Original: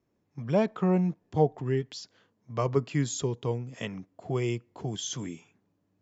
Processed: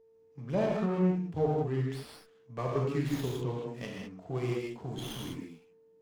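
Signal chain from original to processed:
reverb whose tail is shaped and stops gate 230 ms flat, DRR −3 dB
steady tone 450 Hz −52 dBFS
windowed peak hold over 5 samples
level −7.5 dB

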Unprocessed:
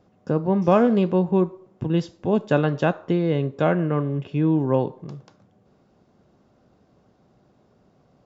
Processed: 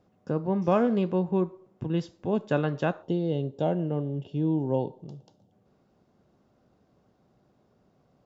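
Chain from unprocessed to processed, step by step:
gain on a spectral selection 0:03.03–0:05.52, 960–2,700 Hz −13 dB
level −6 dB

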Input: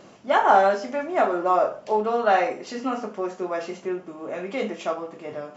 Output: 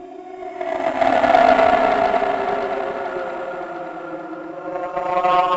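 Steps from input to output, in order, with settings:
tape wow and flutter 26 cents
extreme stretch with random phases 14×, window 0.10 s, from 0:01.11
convolution reverb, pre-delay 3 ms, DRR 2 dB
harmonic generator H 7 −21 dB, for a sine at −2 dBFS
echo with a time of its own for lows and highs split 670 Hz, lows 374 ms, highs 569 ms, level −6.5 dB
level +1 dB

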